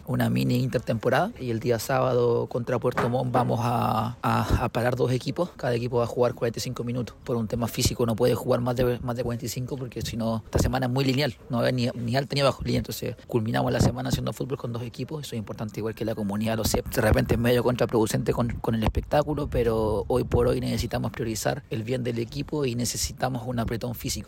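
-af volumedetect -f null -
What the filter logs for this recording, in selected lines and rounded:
mean_volume: -25.6 dB
max_volume: -10.0 dB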